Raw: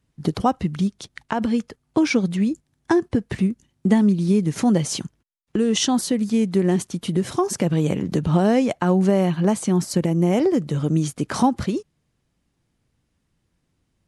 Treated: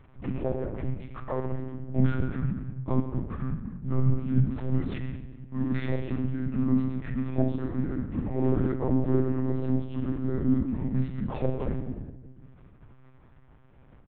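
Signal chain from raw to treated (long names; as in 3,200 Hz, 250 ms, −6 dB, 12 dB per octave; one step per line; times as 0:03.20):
phase-vocoder pitch shift without resampling −8 semitones
low-pass filter 1,500 Hz 12 dB per octave
parametric band 110 Hz −13 dB 0.44 octaves
hum removal 211.2 Hz, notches 38
upward compression, threshold −27 dBFS
leveller curve on the samples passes 1
single-tap delay 125 ms −18.5 dB
rectangular room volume 1,100 cubic metres, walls mixed, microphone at 1.5 metres
one-pitch LPC vocoder at 8 kHz 130 Hz
amplitude modulation by smooth noise, depth 50%
level −7 dB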